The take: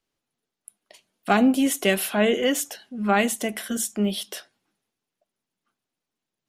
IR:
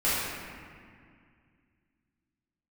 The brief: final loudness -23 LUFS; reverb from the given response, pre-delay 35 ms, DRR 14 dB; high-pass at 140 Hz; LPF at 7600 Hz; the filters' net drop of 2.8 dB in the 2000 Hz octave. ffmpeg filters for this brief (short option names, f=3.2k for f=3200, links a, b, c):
-filter_complex "[0:a]highpass=140,lowpass=7.6k,equalizer=f=2k:t=o:g=-3.5,asplit=2[a][b];[1:a]atrim=start_sample=2205,adelay=35[c];[b][c]afir=irnorm=-1:irlink=0,volume=-27.5dB[d];[a][d]amix=inputs=2:normalize=0,volume=1dB"